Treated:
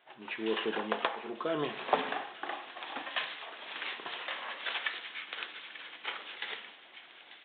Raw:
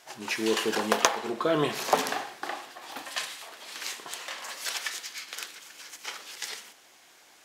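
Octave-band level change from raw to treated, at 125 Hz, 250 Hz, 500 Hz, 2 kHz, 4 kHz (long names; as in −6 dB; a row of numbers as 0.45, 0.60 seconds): −9.5, −7.0, −6.0, −3.0, −5.0 decibels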